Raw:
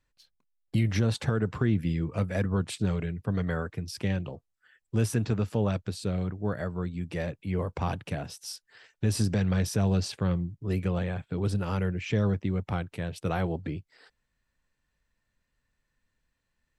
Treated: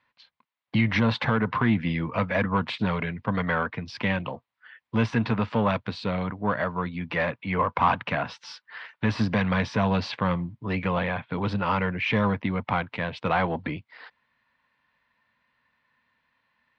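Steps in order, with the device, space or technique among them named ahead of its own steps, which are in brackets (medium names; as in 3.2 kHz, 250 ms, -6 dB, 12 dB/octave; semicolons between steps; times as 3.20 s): de-esser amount 70%; 7.11–9.20 s: peaking EQ 1.3 kHz +5 dB 0.86 oct; overdrive pedal into a guitar cabinet (overdrive pedal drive 14 dB, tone 4.8 kHz, clips at -15 dBFS; cabinet simulation 81–4000 Hz, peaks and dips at 120 Hz +3 dB, 230 Hz +6 dB, 380 Hz -8 dB, 1 kHz +9 dB, 2.1 kHz +4 dB); trim +2 dB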